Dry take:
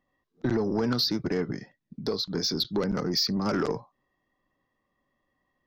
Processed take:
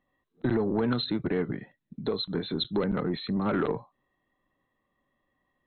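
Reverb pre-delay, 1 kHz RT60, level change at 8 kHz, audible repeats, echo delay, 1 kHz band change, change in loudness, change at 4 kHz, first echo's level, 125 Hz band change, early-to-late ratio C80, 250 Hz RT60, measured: none, none, under -40 dB, none, none, 0.0 dB, -1.5 dB, -6.5 dB, none, 0.0 dB, none, none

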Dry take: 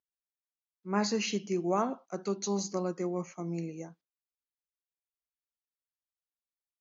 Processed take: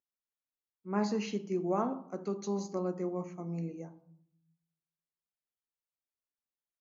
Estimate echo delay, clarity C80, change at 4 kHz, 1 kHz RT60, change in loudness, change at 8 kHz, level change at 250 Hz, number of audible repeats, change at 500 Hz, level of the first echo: none, 19.0 dB, -10.0 dB, 0.65 s, -2.0 dB, n/a, -1.0 dB, none, -1.5 dB, none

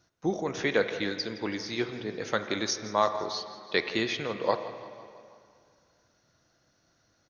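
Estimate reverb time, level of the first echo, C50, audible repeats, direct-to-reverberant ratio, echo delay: 2.2 s, -16.0 dB, 9.0 dB, 4, 8.0 dB, 0.167 s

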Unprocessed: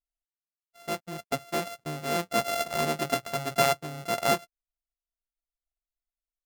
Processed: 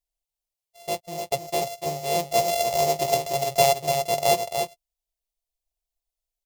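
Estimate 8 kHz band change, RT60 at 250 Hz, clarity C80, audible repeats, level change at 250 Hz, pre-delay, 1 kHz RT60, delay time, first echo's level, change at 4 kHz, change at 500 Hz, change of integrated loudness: +7.0 dB, none, none, 1, -2.0 dB, none, none, 0.293 s, -6.0 dB, +4.5 dB, +7.0 dB, +5.0 dB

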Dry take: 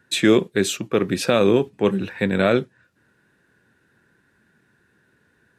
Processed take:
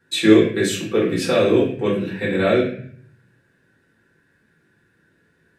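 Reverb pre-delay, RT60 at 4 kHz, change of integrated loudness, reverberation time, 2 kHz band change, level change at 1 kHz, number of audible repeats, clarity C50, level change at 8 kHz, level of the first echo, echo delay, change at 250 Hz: 3 ms, 0.50 s, +1.5 dB, 0.55 s, +1.0 dB, -1.0 dB, none, 4.5 dB, -1.0 dB, none, none, +2.5 dB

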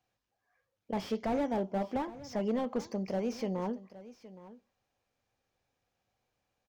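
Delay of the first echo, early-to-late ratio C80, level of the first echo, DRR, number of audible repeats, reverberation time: 0.817 s, none, -17.0 dB, none, 1, none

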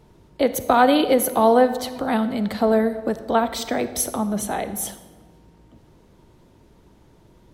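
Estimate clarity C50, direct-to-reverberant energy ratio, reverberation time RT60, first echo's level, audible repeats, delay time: 12.5 dB, 12.0 dB, 1.4 s, none, none, none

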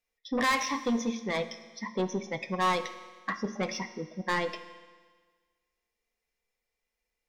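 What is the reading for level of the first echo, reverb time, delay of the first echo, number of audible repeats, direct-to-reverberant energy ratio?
none, 1.5 s, none, none, 10.0 dB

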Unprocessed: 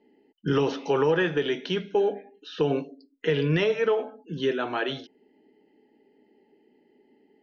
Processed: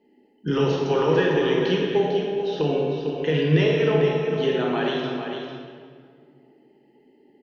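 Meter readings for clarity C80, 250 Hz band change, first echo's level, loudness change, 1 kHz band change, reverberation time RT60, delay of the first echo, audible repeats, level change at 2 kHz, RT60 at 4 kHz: 0.5 dB, +5.0 dB, -7.5 dB, +4.0 dB, +3.5 dB, 2.0 s, 0.449 s, 1, +2.0 dB, 1.4 s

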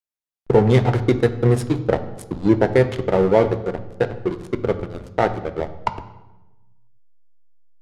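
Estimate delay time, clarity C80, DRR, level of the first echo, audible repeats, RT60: none, 15.0 dB, 9.5 dB, none, none, 1.1 s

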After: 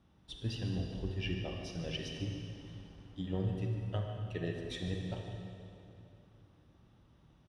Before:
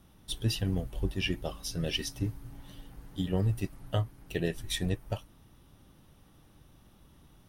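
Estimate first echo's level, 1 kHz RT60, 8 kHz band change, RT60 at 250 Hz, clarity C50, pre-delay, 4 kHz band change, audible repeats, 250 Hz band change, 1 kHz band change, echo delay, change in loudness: -12.5 dB, 2.6 s, -14.0 dB, 3.1 s, 2.0 dB, 36 ms, -8.0 dB, 1, -4.5 dB, -5.5 dB, 0.152 s, -5.5 dB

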